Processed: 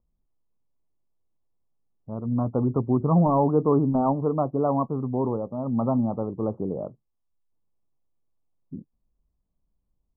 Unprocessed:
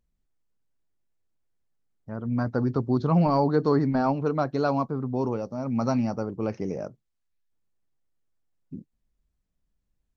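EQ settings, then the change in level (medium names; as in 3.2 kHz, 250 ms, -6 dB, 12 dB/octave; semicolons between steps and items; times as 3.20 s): steep low-pass 1.2 kHz 72 dB/octave; +1.5 dB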